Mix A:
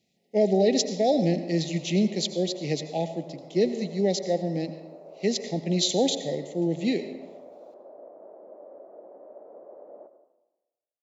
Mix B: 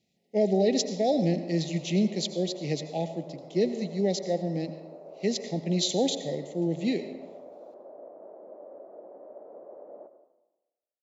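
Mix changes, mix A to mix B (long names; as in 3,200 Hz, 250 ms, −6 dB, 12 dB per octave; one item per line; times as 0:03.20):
speech −3.0 dB
master: add low-shelf EQ 150 Hz +4.5 dB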